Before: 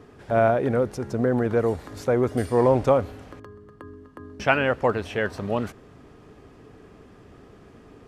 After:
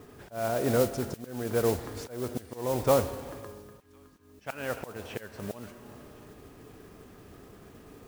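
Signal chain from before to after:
four-comb reverb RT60 1.8 s, combs from 25 ms, DRR 13.5 dB
volume swells 486 ms
on a send: delay with a high-pass on its return 530 ms, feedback 65%, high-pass 2,200 Hz, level −19.5 dB
on the sum: noise that follows the level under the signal 14 dB
level −2 dB

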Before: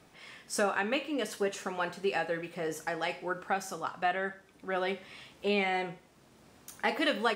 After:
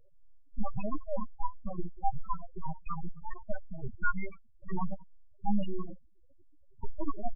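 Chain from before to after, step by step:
low-pass that shuts in the quiet parts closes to 2,300 Hz, open at −25.5 dBFS
high-shelf EQ 2,500 Hz −8 dB
far-end echo of a speakerphone 90 ms, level −20 dB
dynamic equaliser 5,200 Hz, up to +7 dB, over −56 dBFS, Q 1.3
full-wave rectification
gate on every frequency bin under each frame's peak −15 dB strong
level +7.5 dB

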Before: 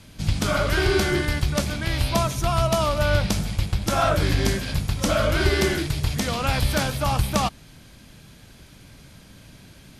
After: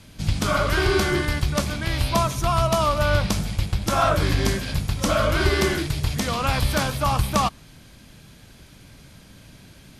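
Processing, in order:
dynamic equaliser 1,100 Hz, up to +6 dB, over −42 dBFS, Q 4

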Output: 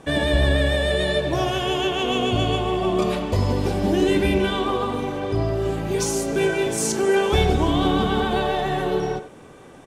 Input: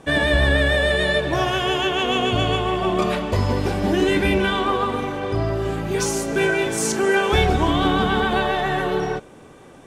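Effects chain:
dynamic equaliser 1,600 Hz, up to −7 dB, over −36 dBFS, Q 0.89
far-end echo of a speakerphone 90 ms, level −10 dB

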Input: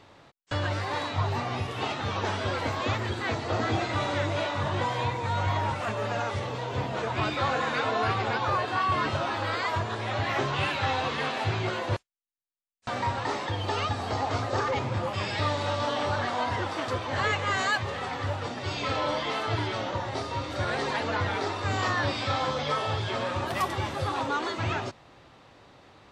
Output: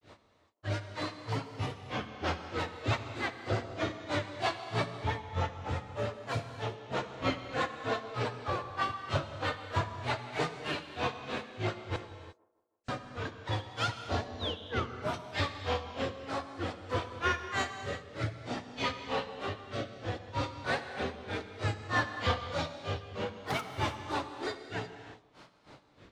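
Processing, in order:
in parallel at −8 dB: hard clipping −31 dBFS, distortion −7 dB
on the sum: sound drawn into the spectrogram fall, 0:14.33–0:14.99, 740–6,400 Hz −30 dBFS
rotating-speaker cabinet horn 6 Hz, later 0.6 Hz, at 0:10.51
granular cloud 197 ms, grains 3.2 per second, spray 11 ms, pitch spread up and down by 3 semitones
on a send: delay with a band-pass on its return 159 ms, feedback 48%, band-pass 520 Hz, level −20.5 dB
on the sum: reverb whose tail is shaped and stops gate 380 ms flat, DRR 7.5 dB

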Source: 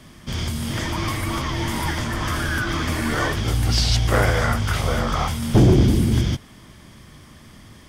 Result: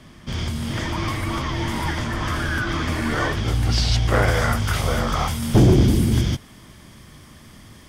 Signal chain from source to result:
high-shelf EQ 7,600 Hz −9 dB, from 0:04.28 +3.5 dB

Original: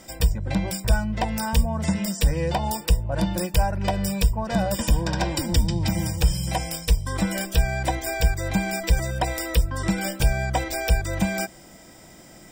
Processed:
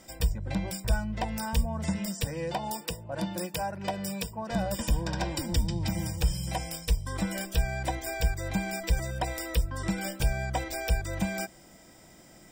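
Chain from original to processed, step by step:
0:02.24–0:04.50: high-pass filter 160 Hz 12 dB per octave
level −6.5 dB

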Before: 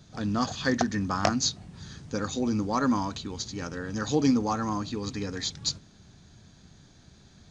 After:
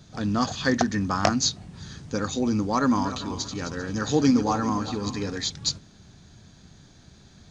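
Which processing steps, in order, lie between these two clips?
0:02.76–0:05.37: feedback delay that plays each chunk backwards 196 ms, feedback 48%, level −11 dB
level +3 dB

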